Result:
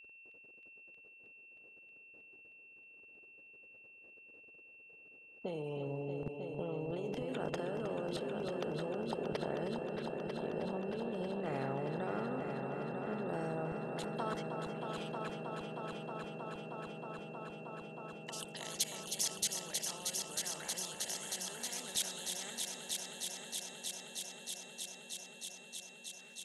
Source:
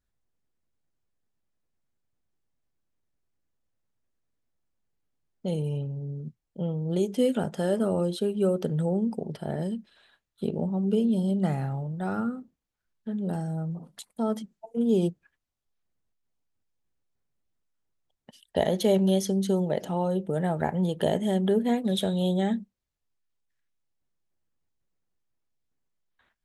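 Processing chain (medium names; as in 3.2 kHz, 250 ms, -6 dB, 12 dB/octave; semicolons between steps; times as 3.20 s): compressor with a negative ratio -27 dBFS, ratio -0.5; band-pass sweep 450 Hz -> 6.7 kHz, 13.37–15.99 s; level held to a coarse grid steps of 24 dB; whistle 2.7 kHz -75 dBFS; multi-head delay 315 ms, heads all three, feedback 72%, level -12 dB; spectrum-flattening compressor 2:1; trim +16 dB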